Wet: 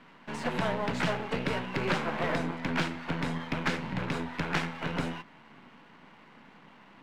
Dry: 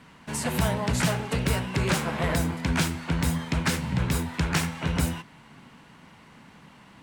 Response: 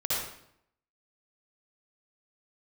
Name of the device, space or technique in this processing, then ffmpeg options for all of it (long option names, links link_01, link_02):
crystal radio: -af "highpass=210,lowpass=3100,aeval=exprs='if(lt(val(0),0),0.447*val(0),val(0))':channel_layout=same,volume=1dB"